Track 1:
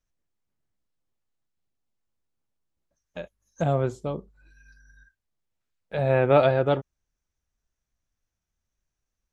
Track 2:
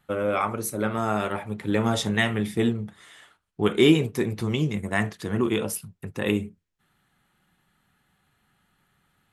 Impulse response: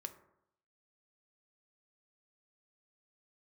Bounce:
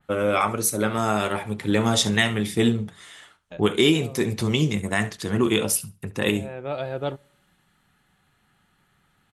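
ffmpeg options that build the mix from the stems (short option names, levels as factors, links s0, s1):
-filter_complex "[0:a]adelay=350,volume=0.668,asplit=2[s0][s1];[s1]volume=0.112[s2];[1:a]alimiter=limit=0.266:level=0:latency=1:release=456,lowpass=11000,volume=1.41,asplit=3[s3][s4][s5];[s4]volume=0.126[s6];[s5]apad=whole_len=426572[s7];[s0][s7]sidechaincompress=threshold=0.0112:ratio=4:attack=9.4:release=578[s8];[2:a]atrim=start_sample=2205[s9];[s2][s9]afir=irnorm=-1:irlink=0[s10];[s6]aecho=0:1:69|138|207:1|0.18|0.0324[s11];[s8][s3][s10][s11]amix=inputs=4:normalize=0,adynamicequalizer=threshold=0.00891:dfrequency=2800:dqfactor=0.7:tfrequency=2800:tqfactor=0.7:attack=5:release=100:ratio=0.375:range=4:mode=boostabove:tftype=highshelf"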